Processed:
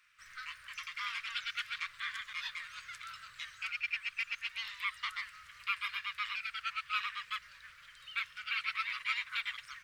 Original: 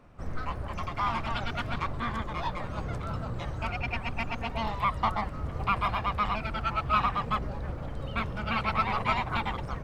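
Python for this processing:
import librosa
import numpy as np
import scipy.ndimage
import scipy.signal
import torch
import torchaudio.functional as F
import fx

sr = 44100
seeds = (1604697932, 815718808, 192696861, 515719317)

p1 = scipy.signal.sosfilt(scipy.signal.cheby2(4, 40, 840.0, 'highpass', fs=sr, output='sos'), x)
p2 = fx.rider(p1, sr, range_db=4, speed_s=0.5)
p3 = p1 + (p2 * librosa.db_to_amplitude(-1.0))
y = p3 * librosa.db_to_amplitude(-4.5)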